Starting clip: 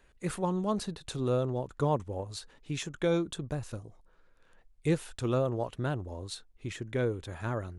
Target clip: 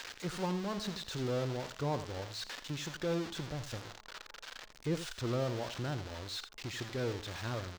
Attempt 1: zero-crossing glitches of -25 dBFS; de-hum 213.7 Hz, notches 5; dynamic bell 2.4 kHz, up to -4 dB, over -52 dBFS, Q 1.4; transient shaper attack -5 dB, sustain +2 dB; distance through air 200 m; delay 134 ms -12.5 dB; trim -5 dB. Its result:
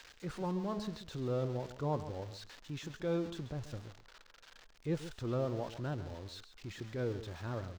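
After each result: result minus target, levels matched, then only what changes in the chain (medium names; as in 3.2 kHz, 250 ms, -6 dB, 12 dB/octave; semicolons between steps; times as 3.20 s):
echo 50 ms late; zero-crossing glitches: distortion -11 dB
change: delay 84 ms -12.5 dB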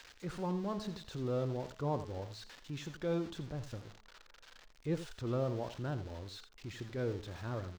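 zero-crossing glitches: distortion -11 dB
change: zero-crossing glitches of -14 dBFS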